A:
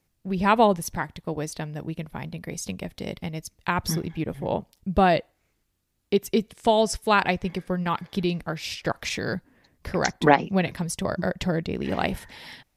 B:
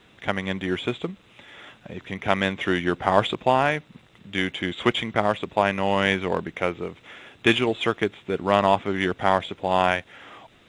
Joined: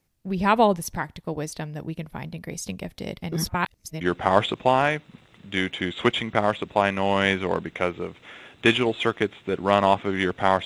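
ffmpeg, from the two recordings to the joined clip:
ffmpeg -i cue0.wav -i cue1.wav -filter_complex "[0:a]apad=whole_dur=10.65,atrim=end=10.65,asplit=2[link_01][link_02];[link_01]atrim=end=3.322[link_03];[link_02]atrim=start=3.318:end=4.012,asetpts=PTS-STARTPTS,areverse[link_04];[1:a]atrim=start=2.818:end=9.46[link_05];[link_03][link_04]acrossfade=duration=0.004:curve1=hsin:curve2=hsin[link_06];[link_06][link_05]acrossfade=duration=0.004:curve1=hsin:curve2=hsin" out.wav

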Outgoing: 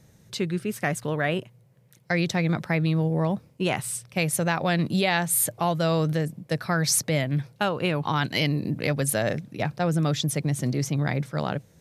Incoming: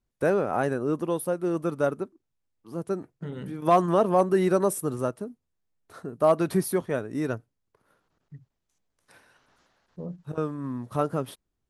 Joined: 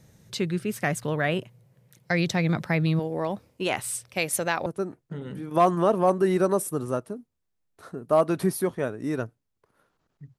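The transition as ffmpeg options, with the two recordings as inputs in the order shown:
ffmpeg -i cue0.wav -i cue1.wav -filter_complex "[0:a]asettb=1/sr,asplit=3[link_01][link_02][link_03];[link_01]atrim=end=2.994[link_04];[link_02]atrim=start=2.99:end=4.66,asetpts=PTS-STARTPTS,afade=type=in:duration=0.004:curve=qsin,afade=type=out:start_time=1.666:duration=0.004:curve=qsin,equalizer=frequency=150:width=1.8:gain=-13[link_05];[link_03]atrim=start=4.656[link_06];[link_04][link_05]acrossfade=duration=0.004:curve1=hsin:curve2=qsin[link_07];[link_07][link_06]acrossfade=duration=0.004:curve1=qsin:curve2=hsin,apad=whole_dur=10.38,atrim=end=10.38,atrim=end=4.662[link_08];[1:a]atrim=start=2.768:end=8.49[link_09];[link_08][link_09]acrossfade=duration=0.004:curve1=hsin:curve2=hsin" out.wav

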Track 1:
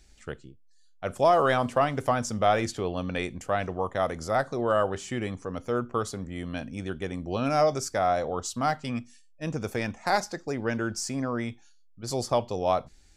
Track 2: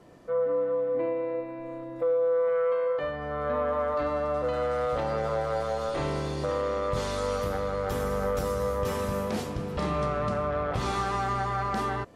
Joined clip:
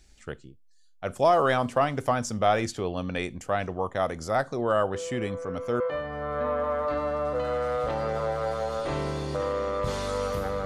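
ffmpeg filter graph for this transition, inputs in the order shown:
ffmpeg -i cue0.wav -i cue1.wav -filter_complex "[1:a]asplit=2[link_01][link_02];[0:a]apad=whole_dur=10.65,atrim=end=10.65,atrim=end=5.802[link_03];[link_02]atrim=start=2.888:end=7.74[link_04];[link_01]atrim=start=2.03:end=2.89,asetpts=PTS-STARTPTS,volume=-11dB,afade=type=in:duration=0.004:curve=hsin,afade=type=out:start_time=0.856:duration=0.004:curve=hsin,adelay=4940[link_05];[link_03][link_04]acrossfade=duration=0.004:curve1=hsin:curve2=hsin[link_06];[link_06][link_05]amix=inputs=2:normalize=0" out.wav

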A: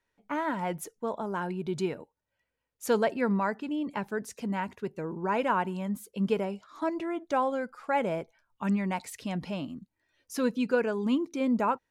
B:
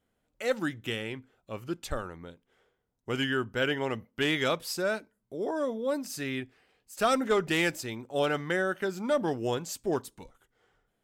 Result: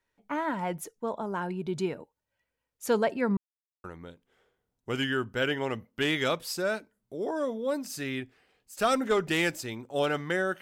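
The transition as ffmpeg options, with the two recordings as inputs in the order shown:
ffmpeg -i cue0.wav -i cue1.wav -filter_complex "[0:a]apad=whole_dur=10.61,atrim=end=10.61,asplit=2[link_01][link_02];[link_01]atrim=end=3.37,asetpts=PTS-STARTPTS,afade=type=out:start_time=3.366:duration=0.004:curve=hsin[link_03];[link_02]atrim=start=3.37:end=3.84,asetpts=PTS-STARTPTS,volume=0[link_04];[1:a]atrim=start=2.04:end=8.81,asetpts=PTS-STARTPTS,afade=type=in:duration=0.004:curve=hsin[link_05];[link_03][link_04][link_05]concat=n=3:v=0:a=1" out.wav

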